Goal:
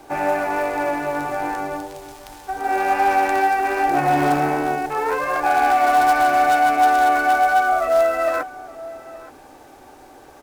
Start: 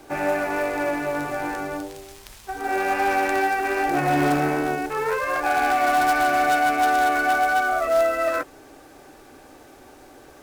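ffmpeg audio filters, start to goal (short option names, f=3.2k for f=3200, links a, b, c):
-filter_complex "[0:a]equalizer=f=850:t=o:w=0.66:g=6.5,asplit=2[a][b];[b]adelay=874.6,volume=-17dB,highshelf=f=4k:g=-19.7[c];[a][c]amix=inputs=2:normalize=0"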